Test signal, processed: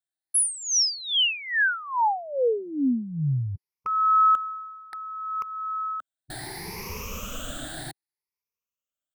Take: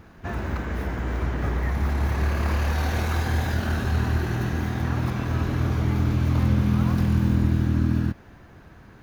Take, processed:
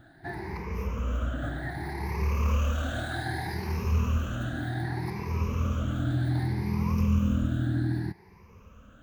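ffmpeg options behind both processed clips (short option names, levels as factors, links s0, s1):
-af "afftfilt=real='re*pow(10,19/40*sin(2*PI*(0.82*log(max(b,1)*sr/1024/100)/log(2)-(0.65)*(pts-256)/sr)))':imag='im*pow(10,19/40*sin(2*PI*(0.82*log(max(b,1)*sr/1024/100)/log(2)-(0.65)*(pts-256)/sr)))':win_size=1024:overlap=0.75,volume=0.355"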